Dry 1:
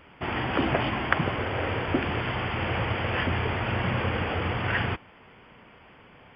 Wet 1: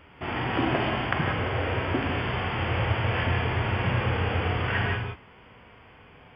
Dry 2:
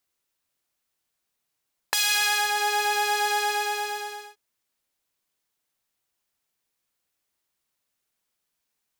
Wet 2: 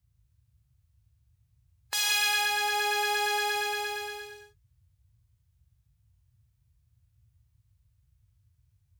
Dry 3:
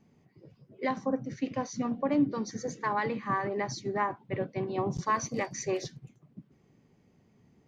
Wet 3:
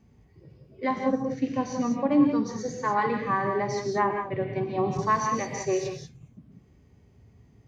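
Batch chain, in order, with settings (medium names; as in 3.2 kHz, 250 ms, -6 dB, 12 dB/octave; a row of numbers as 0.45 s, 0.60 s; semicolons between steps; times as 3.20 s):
gated-style reverb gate 210 ms rising, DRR 4.5 dB; band noise 47–120 Hz -62 dBFS; harmonic-percussive split percussive -8 dB; normalise loudness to -27 LUFS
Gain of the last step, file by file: +2.0 dB, -4.0 dB, +4.5 dB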